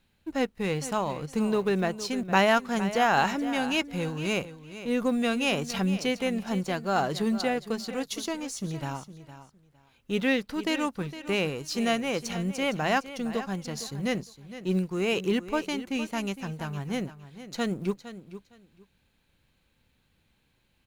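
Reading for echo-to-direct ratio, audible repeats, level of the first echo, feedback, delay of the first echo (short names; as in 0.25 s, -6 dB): -13.5 dB, 2, -13.5 dB, 19%, 0.46 s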